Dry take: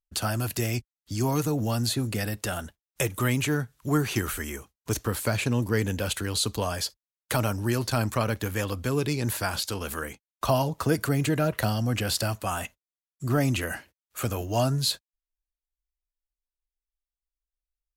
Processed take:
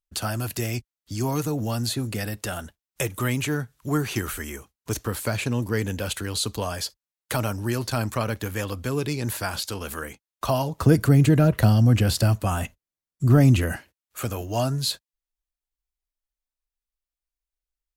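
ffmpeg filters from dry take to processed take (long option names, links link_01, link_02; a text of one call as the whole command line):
ffmpeg -i in.wav -filter_complex "[0:a]asettb=1/sr,asplit=3[link_01][link_02][link_03];[link_01]atrim=end=10.794[link_04];[link_02]atrim=start=10.79:end=13.76,asetpts=PTS-STARTPTS,afade=type=in:duration=0.004:curve=qsin,afade=type=out:start_time=2.966:duration=0.004:curve=qsin,lowshelf=frequency=340:gain=12[link_05];[link_03]atrim=start=13.756[link_06];[link_04][link_05]acrossfade=duration=0.004:curve1=hsin:curve2=qsin[link_07];[link_07][link_06]acrossfade=duration=0.004:curve1=qsin:curve2=hsin" out.wav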